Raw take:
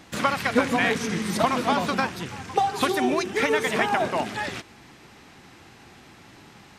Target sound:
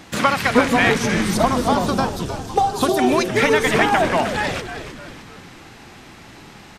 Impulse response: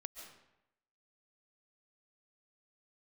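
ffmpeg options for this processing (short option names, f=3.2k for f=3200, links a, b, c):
-filter_complex "[0:a]asettb=1/sr,asplit=3[a][b][c];[a]atrim=end=1.344[d];[b]atrim=start=1.34:end=2.99,asetpts=PTS-STARTPTS,afade=t=in:d=0.004:c=qsin,afade=t=out:st=1.646:d=0.004:c=qsin,equalizer=f=2.1k:t=o:w=0.95:g=-15[e];[c]atrim=start=2.986[f];[d][e]acrossfade=d=0.004:c1=hsin:c2=qsin[g];[g][f]acrossfade=d=0.004:c1=qsin:c2=hsin,acontrast=67,asplit=2[h][i];[i]asplit=5[j][k][l][m][n];[j]adelay=308,afreqshift=-130,volume=-10dB[o];[k]adelay=616,afreqshift=-260,volume=-16.6dB[p];[l]adelay=924,afreqshift=-390,volume=-23.1dB[q];[m]adelay=1232,afreqshift=-520,volume=-29.7dB[r];[n]adelay=1540,afreqshift=-650,volume=-36.2dB[s];[o][p][q][r][s]amix=inputs=5:normalize=0[t];[h][t]amix=inputs=2:normalize=0"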